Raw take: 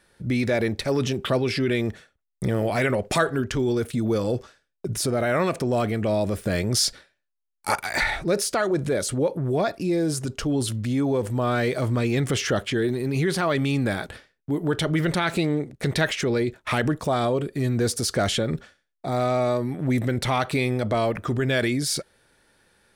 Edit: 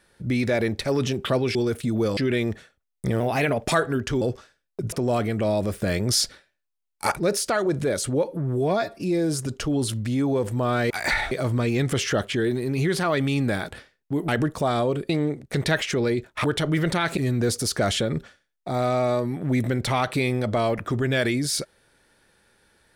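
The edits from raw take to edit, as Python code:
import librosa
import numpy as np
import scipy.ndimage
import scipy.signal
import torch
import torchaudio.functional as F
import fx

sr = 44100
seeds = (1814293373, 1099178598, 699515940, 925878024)

y = fx.edit(x, sr, fx.speed_span(start_s=2.58, length_s=0.53, speed=1.12),
    fx.move(start_s=3.65, length_s=0.62, to_s=1.55),
    fx.cut(start_s=4.98, length_s=0.58),
    fx.move(start_s=7.8, length_s=0.41, to_s=11.69),
    fx.stretch_span(start_s=9.29, length_s=0.52, factor=1.5),
    fx.swap(start_s=14.66, length_s=0.73, other_s=16.74, other_length_s=0.81), tone=tone)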